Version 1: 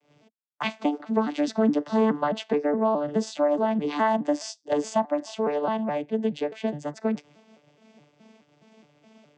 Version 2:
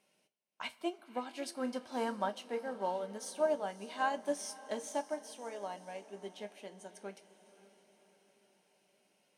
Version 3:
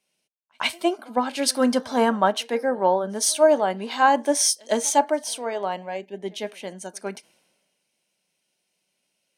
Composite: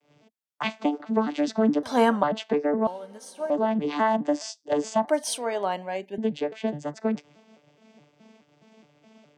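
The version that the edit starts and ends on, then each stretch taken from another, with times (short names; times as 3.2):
1
1.83–2.23 from 3
2.87–3.5 from 2
5.08–6.18 from 3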